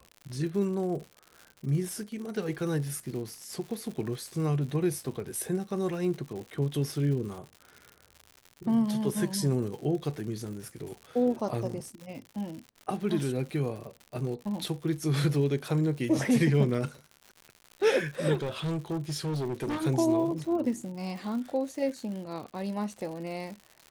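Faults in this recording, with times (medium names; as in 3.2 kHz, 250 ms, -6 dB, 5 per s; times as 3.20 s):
crackle 130 per s -38 dBFS
18.34–19.86 s: clipped -28 dBFS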